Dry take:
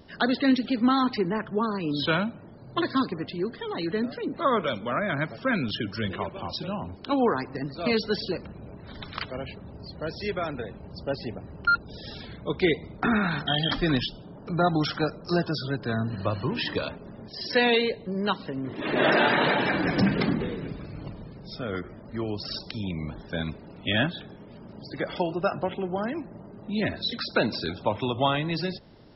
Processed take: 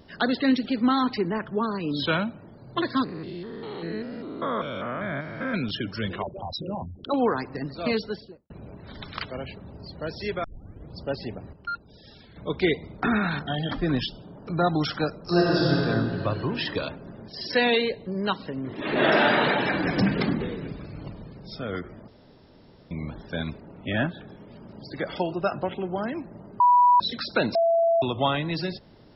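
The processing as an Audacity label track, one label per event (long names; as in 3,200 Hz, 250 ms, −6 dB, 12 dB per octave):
3.040000	5.540000	spectrum averaged block by block every 200 ms
6.220000	7.140000	spectral envelope exaggerated exponent 3
7.800000	8.500000	fade out and dull
10.440000	10.440000	tape start 0.53 s
11.530000	12.360000	clip gain −10 dB
13.390000	13.980000	low-pass filter 1,200 Hz 6 dB per octave
15.220000	15.780000	thrown reverb, RT60 2.7 s, DRR −5.5 dB
18.810000	19.330000	thrown reverb, RT60 0.85 s, DRR 4.5 dB
22.080000	22.910000	fill with room tone
23.600000	24.280000	low-pass filter 2,000 Hz
26.600000	27.000000	beep over 980 Hz −13.5 dBFS
27.550000	28.020000	beep over 669 Hz −17.5 dBFS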